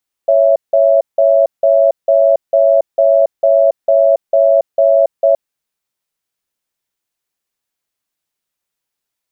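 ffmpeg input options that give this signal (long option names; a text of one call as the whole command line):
ffmpeg -f lavfi -i "aevalsrc='0.335*(sin(2*PI*556*t)+sin(2*PI*663*t))*clip(min(mod(t,0.45),0.28-mod(t,0.45))/0.005,0,1)':duration=5.07:sample_rate=44100" out.wav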